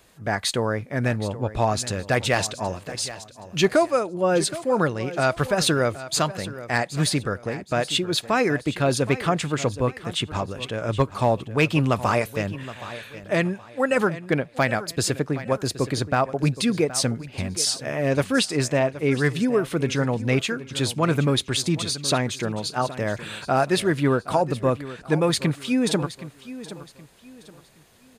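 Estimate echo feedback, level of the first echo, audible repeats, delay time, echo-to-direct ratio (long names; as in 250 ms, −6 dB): 32%, −15.0 dB, 3, 771 ms, −14.5 dB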